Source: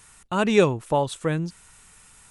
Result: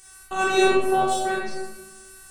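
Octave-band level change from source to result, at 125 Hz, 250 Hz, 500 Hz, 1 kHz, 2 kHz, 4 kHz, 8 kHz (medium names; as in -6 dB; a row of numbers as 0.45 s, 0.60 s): -14.5 dB, -2.5 dB, 0.0 dB, +5.5 dB, +5.5 dB, +3.5 dB, +5.5 dB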